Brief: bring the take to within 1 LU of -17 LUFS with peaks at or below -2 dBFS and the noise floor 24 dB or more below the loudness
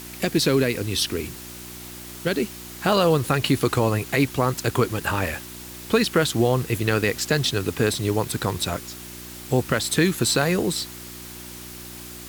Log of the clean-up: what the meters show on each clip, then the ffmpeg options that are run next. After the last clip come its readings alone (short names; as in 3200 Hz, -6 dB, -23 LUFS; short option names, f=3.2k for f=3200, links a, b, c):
hum 60 Hz; harmonics up to 360 Hz; hum level -43 dBFS; noise floor -39 dBFS; noise floor target -47 dBFS; loudness -23.0 LUFS; peak -6.5 dBFS; loudness target -17.0 LUFS
-> -af "bandreject=f=60:t=h:w=4,bandreject=f=120:t=h:w=4,bandreject=f=180:t=h:w=4,bandreject=f=240:t=h:w=4,bandreject=f=300:t=h:w=4,bandreject=f=360:t=h:w=4"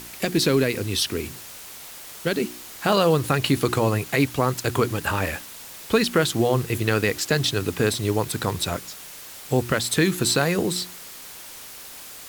hum none; noise floor -41 dBFS; noise floor target -47 dBFS
-> -af "afftdn=nr=6:nf=-41"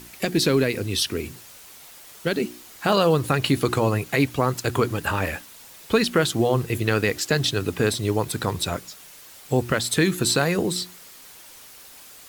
noise floor -46 dBFS; noise floor target -47 dBFS
-> -af "afftdn=nr=6:nf=-46"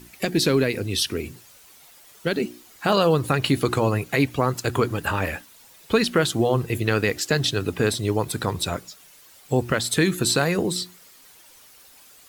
noise floor -51 dBFS; loudness -23.0 LUFS; peak -7.0 dBFS; loudness target -17.0 LUFS
-> -af "volume=6dB,alimiter=limit=-2dB:level=0:latency=1"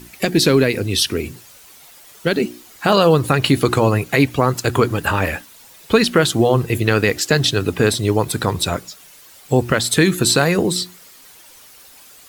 loudness -17.0 LUFS; peak -2.0 dBFS; noise floor -45 dBFS